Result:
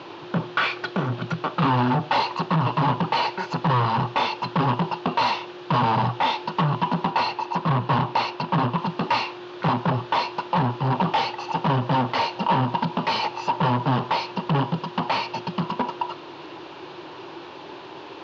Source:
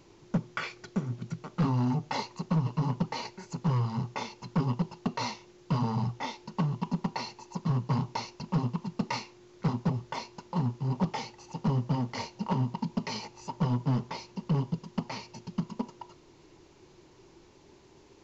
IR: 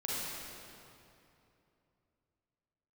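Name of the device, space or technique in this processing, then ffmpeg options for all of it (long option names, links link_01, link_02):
overdrive pedal into a guitar cabinet: -filter_complex "[0:a]asettb=1/sr,asplit=3[link_01][link_02][link_03];[link_01]atrim=end=7.104[link_04];[link_02]atrim=start=7.1:end=8.78,asetpts=PTS-STARTPTS,afade=type=in:duration=0.004:curve=qsin,afade=type=out:start_time=1.676:duration=0.004:curve=qsin,highshelf=frequency=6500:gain=-9.5[link_05];[link_03]atrim=start=8.776[link_06];[link_04][link_05]acrossfade=duration=0.004:curve1=hsin:curve2=qsin[link_07];[link_07][link_06]acrossfade=duration=0.004:curve1=qsin:curve2=hsin,asplit=2[link_08][link_09];[link_09]highpass=frequency=720:poles=1,volume=25dB,asoftclip=type=tanh:threshold=-18.5dB[link_10];[link_08][link_10]amix=inputs=2:normalize=0,lowpass=frequency=5600:poles=1,volume=-6dB,highpass=110,equalizer=frequency=220:width_type=q:width=4:gain=-8,equalizer=frequency=420:width_type=q:width=4:gain=-5,equalizer=frequency=2100:width_type=q:width=4:gain=-9,lowpass=frequency=3600:width=0.5412,lowpass=frequency=3600:width=1.3066,volume=7dB"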